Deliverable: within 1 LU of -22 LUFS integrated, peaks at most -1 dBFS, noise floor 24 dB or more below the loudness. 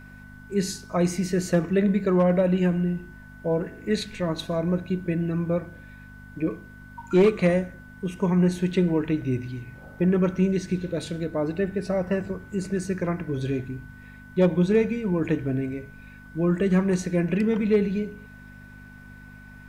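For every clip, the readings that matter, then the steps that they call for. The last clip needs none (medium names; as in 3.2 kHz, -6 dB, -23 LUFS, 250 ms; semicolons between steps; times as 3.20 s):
hum 50 Hz; highest harmonic 250 Hz; hum level -45 dBFS; steady tone 1.5 kHz; tone level -48 dBFS; loudness -25.0 LUFS; peak level -11.5 dBFS; loudness target -22.0 LUFS
-> de-hum 50 Hz, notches 5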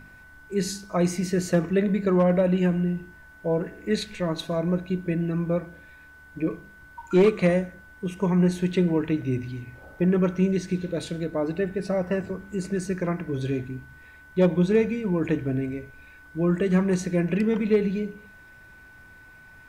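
hum not found; steady tone 1.5 kHz; tone level -48 dBFS
-> band-stop 1.5 kHz, Q 30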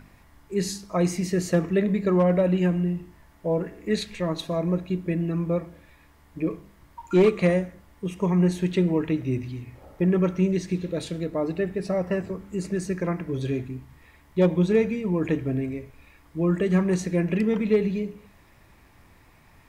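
steady tone not found; loudness -25.5 LUFS; peak level -11.0 dBFS; loudness target -22.0 LUFS
-> trim +3.5 dB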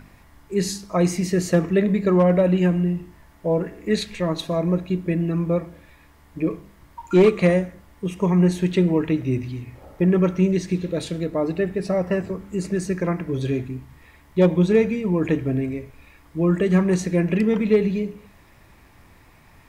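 loudness -22.0 LUFS; peak level -7.5 dBFS; noise floor -52 dBFS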